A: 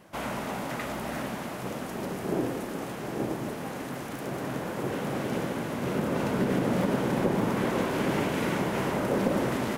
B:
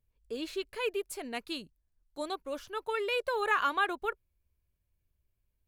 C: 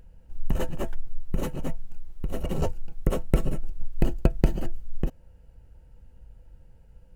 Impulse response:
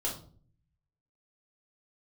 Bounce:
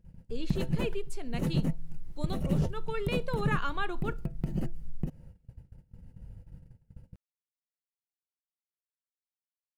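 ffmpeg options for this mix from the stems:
-filter_complex "[1:a]lowpass=6.2k,aemphasis=mode=production:type=cd,volume=-7dB,asplit=2[a][b];[b]volume=-17.5dB[c];[2:a]agate=range=-21dB:threshold=-47dB:ratio=16:detection=peak,equalizer=f=100:t=o:w=0.33:g=4,equalizer=f=2k:t=o:w=0.33:g=5,equalizer=f=5k:t=o:w=0.33:g=4,equalizer=f=10k:t=o:w=0.33:g=5,acompressor=threshold=-26dB:ratio=3,volume=-2dB,asoftclip=type=tanh:threshold=-16.5dB,alimiter=level_in=2dB:limit=-24dB:level=0:latency=1:release=103,volume=-2dB,volume=0dB[d];[3:a]atrim=start_sample=2205[e];[c][e]afir=irnorm=-1:irlink=0[f];[a][d][f]amix=inputs=3:normalize=0,equalizer=f=160:t=o:w=1.7:g=14"

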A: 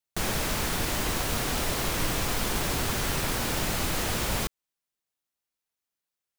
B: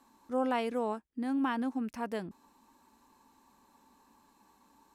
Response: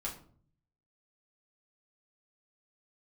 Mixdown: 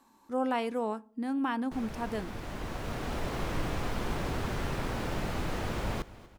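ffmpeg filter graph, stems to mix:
-filter_complex "[0:a]lowpass=f=1.3k:p=1,adelay=1550,volume=-2.5dB,asplit=2[a][b];[b]volume=-18.5dB[c];[1:a]volume=0dB,asplit=3[d][e][f];[e]volume=-16dB[g];[f]apad=whole_len=349974[h];[a][h]sidechaincompress=threshold=-40dB:ratio=4:attack=50:release=1490[i];[2:a]atrim=start_sample=2205[j];[g][j]afir=irnorm=-1:irlink=0[k];[c]aecho=0:1:241|482|723|964|1205|1446|1687|1928:1|0.52|0.27|0.141|0.0731|0.038|0.0198|0.0103[l];[i][d][k][l]amix=inputs=4:normalize=0"

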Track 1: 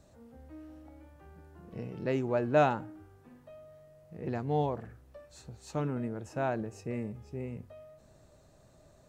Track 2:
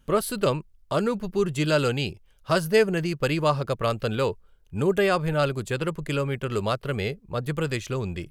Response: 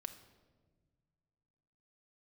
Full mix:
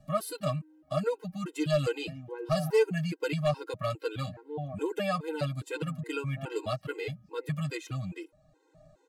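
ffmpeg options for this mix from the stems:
-filter_complex "[0:a]lowpass=f=2.7k:p=1,volume=1dB[a];[1:a]highpass=f=75:w=0.5412,highpass=f=75:w=1.3066,volume=-6.5dB,asplit=2[b][c];[c]apad=whole_len=400811[d];[a][d]sidechaincompress=threshold=-40dB:ratio=10:attack=6.9:release=735[e];[e][b]amix=inputs=2:normalize=0,aecho=1:1:6.4:0.75,aeval=exprs='clip(val(0),-1,0.112)':c=same,afftfilt=real='re*gt(sin(2*PI*2.4*pts/sr)*(1-2*mod(floor(b*sr/1024/270),2)),0)':imag='im*gt(sin(2*PI*2.4*pts/sr)*(1-2*mod(floor(b*sr/1024/270),2)),0)':win_size=1024:overlap=0.75"

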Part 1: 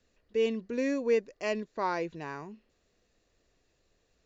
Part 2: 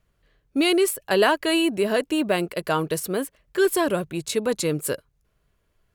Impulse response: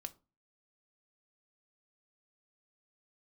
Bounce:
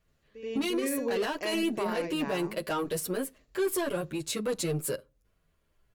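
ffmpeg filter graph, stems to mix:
-filter_complex "[0:a]alimiter=limit=-22.5dB:level=0:latency=1,volume=0dB,asplit=3[a][b][c];[b]volume=-13dB[d];[c]volume=-6.5dB[e];[1:a]asoftclip=type=tanh:threshold=-19dB,asplit=2[f][g];[g]adelay=8.6,afreqshift=-1.3[h];[f][h]amix=inputs=2:normalize=1,volume=-3dB,asplit=3[i][j][k];[j]volume=-4dB[l];[k]apad=whole_len=187692[m];[a][m]sidechaingate=range=-33dB:threshold=-58dB:ratio=16:detection=peak[n];[2:a]atrim=start_sample=2205[o];[d][l]amix=inputs=2:normalize=0[p];[p][o]afir=irnorm=-1:irlink=0[q];[e]aecho=0:1:81:1[r];[n][i][q][r]amix=inputs=4:normalize=0,alimiter=limit=-22dB:level=0:latency=1:release=37"

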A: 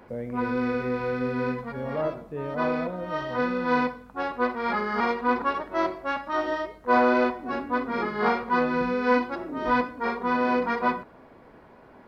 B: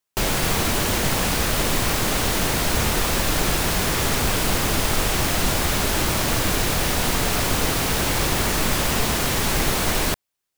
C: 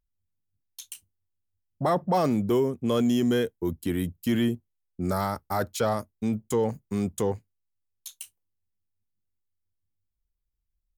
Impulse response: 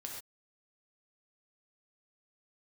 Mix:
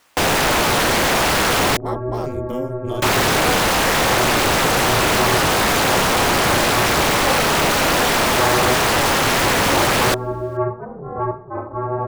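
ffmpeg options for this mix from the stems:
-filter_complex "[0:a]lowpass=f=1.1k:w=0.5412,lowpass=f=1.1k:w=1.3066,adelay=1500,volume=-2.5dB[a];[1:a]highshelf=f=2.1k:g=-10.5,asplit=2[b][c];[c]highpass=f=720:p=1,volume=42dB,asoftclip=type=tanh:threshold=-9.5dB[d];[b][d]amix=inputs=2:normalize=0,lowpass=f=5.9k:p=1,volume=-6dB,volume=-4.5dB,asplit=3[e][f][g];[e]atrim=end=1.77,asetpts=PTS-STARTPTS,afade=t=out:st=1.766:d=0.004:c=hsin[h];[f]atrim=start=1.77:end=3.02,asetpts=PTS-STARTPTS,volume=0[i];[g]atrim=start=3.02,asetpts=PTS-STARTPTS,afade=t=in:d=0.004:c=hsin[j];[h][i][j]concat=n=3:v=0:a=1[k];[2:a]volume=-8.5dB[l];[a][k][l]amix=inputs=3:normalize=0,acontrast=83,aeval=exprs='val(0)*sin(2*PI*130*n/s)':c=same"

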